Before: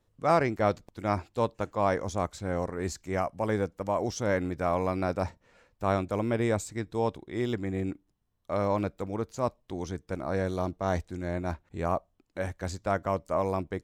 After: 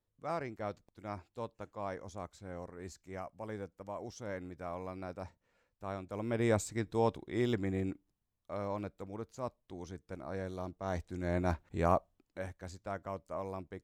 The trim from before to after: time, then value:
6.02 s -14 dB
6.51 s -2 dB
7.61 s -2 dB
8.52 s -10.5 dB
10.78 s -10.5 dB
11.40 s 0 dB
11.92 s 0 dB
12.62 s -12 dB

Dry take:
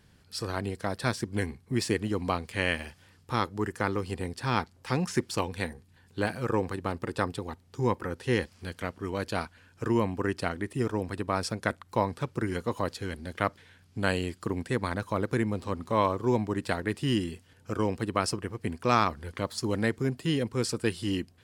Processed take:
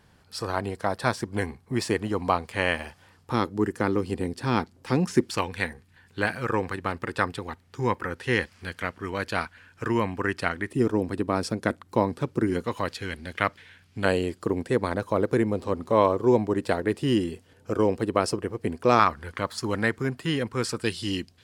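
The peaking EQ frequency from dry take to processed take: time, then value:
peaking EQ +8 dB 1.7 oct
870 Hz
from 3.32 s 290 Hz
from 5.30 s 1.8 kHz
from 10.71 s 300 Hz
from 12.64 s 2.3 kHz
from 14.05 s 470 Hz
from 18.99 s 1.4 kHz
from 20.82 s 4.5 kHz

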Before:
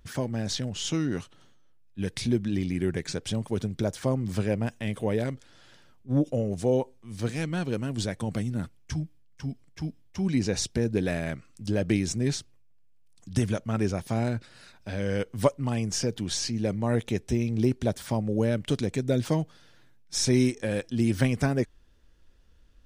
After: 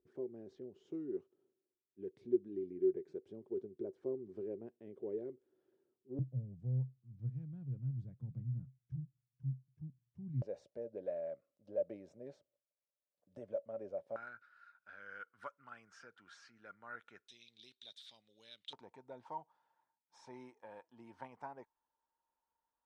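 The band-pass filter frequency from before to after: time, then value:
band-pass filter, Q 13
380 Hz
from 6.19 s 130 Hz
from 10.42 s 570 Hz
from 14.16 s 1.4 kHz
from 17.28 s 3.7 kHz
from 18.73 s 910 Hz

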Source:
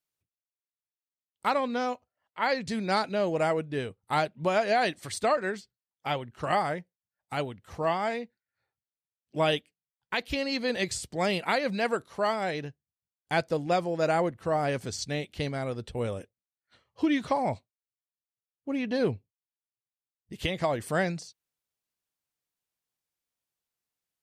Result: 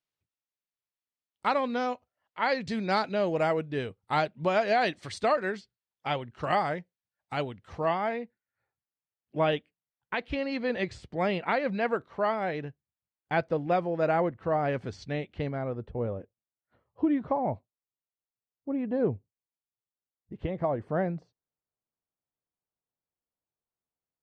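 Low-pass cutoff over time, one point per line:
7.66 s 4.9 kHz
8.13 s 2.3 kHz
15.20 s 2.3 kHz
15.99 s 1 kHz

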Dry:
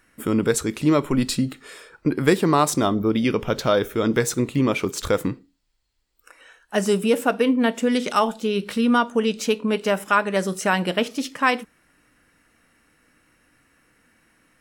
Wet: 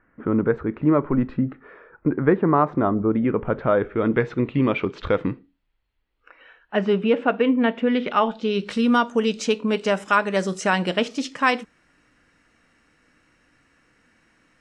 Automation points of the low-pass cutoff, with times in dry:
low-pass 24 dB/octave
3.38 s 1.7 kHz
4.63 s 3.1 kHz
8.17 s 3.1 kHz
8.72 s 7.6 kHz

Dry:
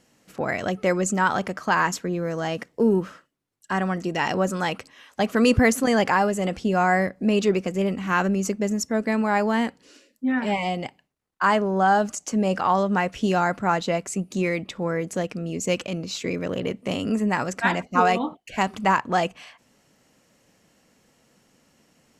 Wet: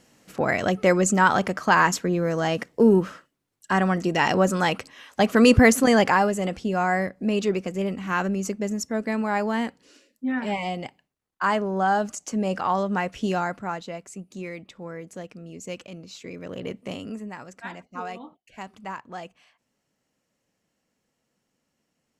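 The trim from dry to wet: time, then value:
5.87 s +3 dB
6.66 s -3 dB
13.32 s -3 dB
13.89 s -11 dB
16.31 s -11 dB
16.76 s -4 dB
17.36 s -15 dB

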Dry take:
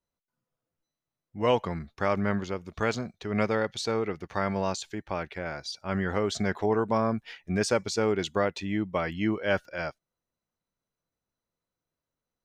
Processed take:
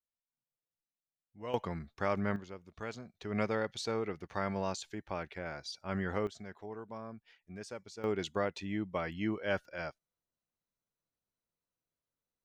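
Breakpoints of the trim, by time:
-17 dB
from 1.54 s -6 dB
from 2.36 s -14 dB
from 3.15 s -6.5 dB
from 6.27 s -19 dB
from 8.04 s -7 dB

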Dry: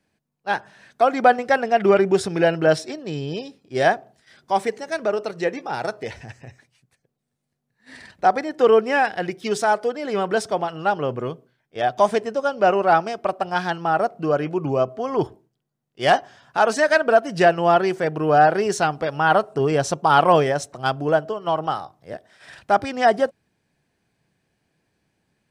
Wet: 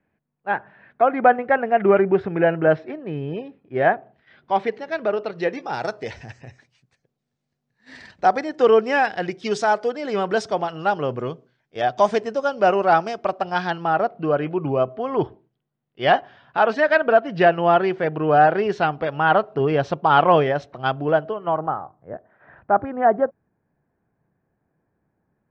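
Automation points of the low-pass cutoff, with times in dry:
low-pass 24 dB/octave
3.87 s 2.3 kHz
4.68 s 3.9 kHz
5.28 s 3.9 kHz
5.72 s 6.7 kHz
13.17 s 6.7 kHz
14.31 s 3.6 kHz
21.25 s 3.6 kHz
21.70 s 1.5 kHz

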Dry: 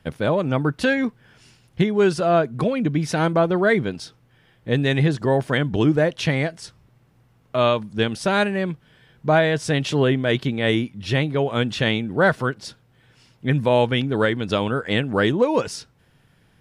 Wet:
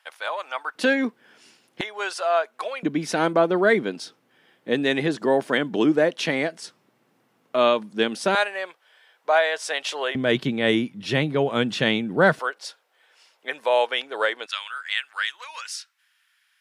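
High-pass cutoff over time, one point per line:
high-pass 24 dB/octave
800 Hz
from 0.75 s 240 Hz
from 1.81 s 670 Hz
from 2.83 s 220 Hz
from 8.35 s 580 Hz
from 10.15 s 150 Hz
from 12.39 s 530 Hz
from 14.46 s 1.4 kHz

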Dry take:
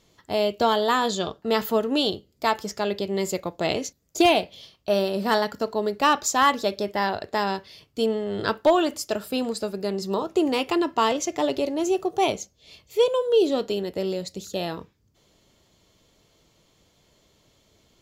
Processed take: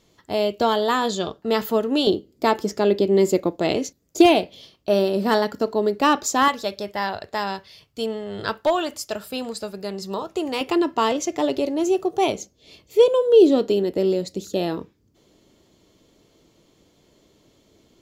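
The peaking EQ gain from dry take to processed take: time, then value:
peaking EQ 310 Hz 1.4 oct
+3 dB
from 2.07 s +13 dB
from 3.56 s +7 dB
from 6.48 s -5 dB
from 10.61 s +3.5 dB
from 12.38 s +9.5 dB

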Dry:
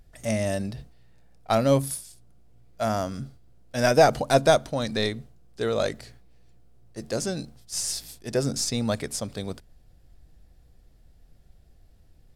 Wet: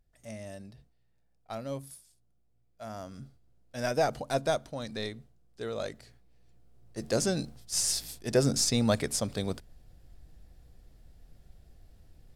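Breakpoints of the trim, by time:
2.84 s -16.5 dB
3.24 s -10 dB
5.99 s -10 dB
7.14 s +0.5 dB

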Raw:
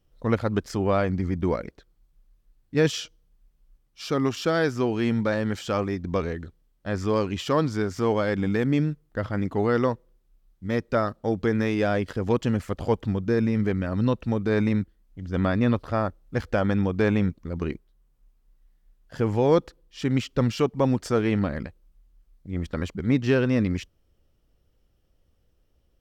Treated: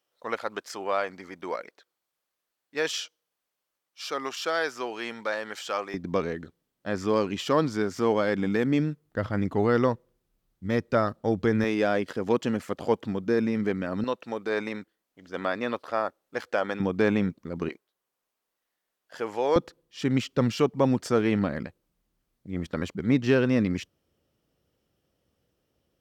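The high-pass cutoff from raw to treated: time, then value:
650 Hz
from 5.94 s 170 Hz
from 9.05 s 79 Hz
from 11.64 s 210 Hz
from 14.04 s 460 Hz
from 16.80 s 170 Hz
from 17.69 s 540 Hz
from 19.56 s 130 Hz

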